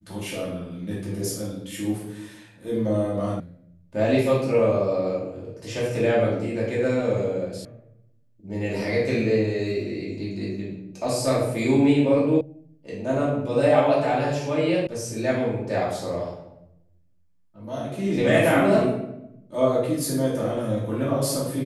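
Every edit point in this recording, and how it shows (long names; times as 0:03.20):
0:03.40: cut off before it has died away
0:07.65: cut off before it has died away
0:12.41: cut off before it has died away
0:14.87: cut off before it has died away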